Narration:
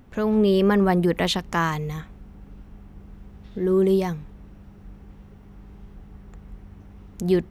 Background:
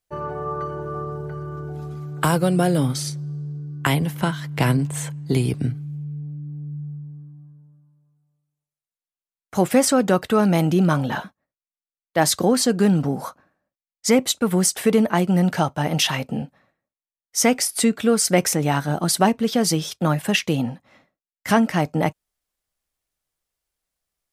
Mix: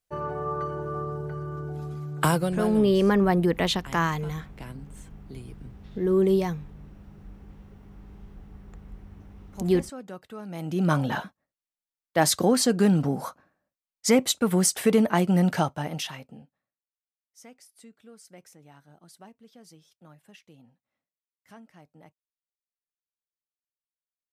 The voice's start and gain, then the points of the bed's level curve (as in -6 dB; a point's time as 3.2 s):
2.40 s, -2.0 dB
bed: 2.29 s -2.5 dB
3.01 s -22 dB
10.45 s -22 dB
10.91 s -3 dB
15.58 s -3 dB
16.9 s -32 dB